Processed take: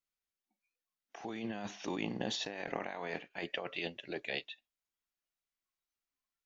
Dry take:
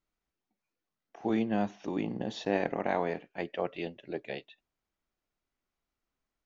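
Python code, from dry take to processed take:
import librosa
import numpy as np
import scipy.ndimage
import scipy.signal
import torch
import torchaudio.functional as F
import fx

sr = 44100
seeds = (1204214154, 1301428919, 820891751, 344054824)

y = fx.tilt_shelf(x, sr, db=-7.0, hz=1200.0)
y = fx.over_compress(y, sr, threshold_db=-39.0, ratio=-1.0)
y = fx.noise_reduce_blind(y, sr, reduce_db=13)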